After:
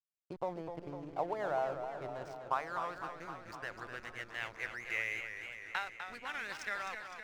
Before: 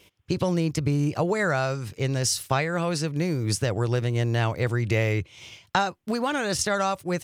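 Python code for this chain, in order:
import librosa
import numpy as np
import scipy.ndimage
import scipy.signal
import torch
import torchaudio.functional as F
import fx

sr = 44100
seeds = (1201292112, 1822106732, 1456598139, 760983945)

y = fx.tape_stop_end(x, sr, length_s=0.34)
y = fx.filter_sweep_bandpass(y, sr, from_hz=770.0, to_hz=2100.0, start_s=1.69, end_s=4.38, q=2.8)
y = fx.backlash(y, sr, play_db=-40.0)
y = fx.echo_warbled(y, sr, ms=254, feedback_pct=69, rate_hz=2.8, cents=114, wet_db=-8)
y = y * librosa.db_to_amplitude(-3.5)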